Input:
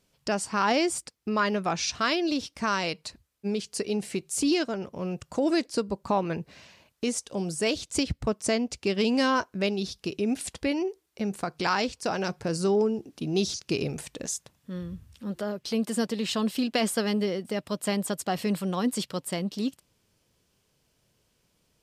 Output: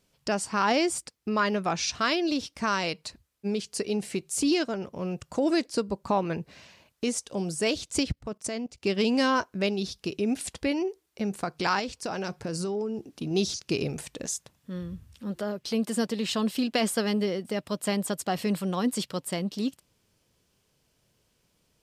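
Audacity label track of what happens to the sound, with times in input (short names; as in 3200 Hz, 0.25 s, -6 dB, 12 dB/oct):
8.120000	8.840000	level quantiser steps of 16 dB
11.790000	13.310000	compressor, threshold -27 dBFS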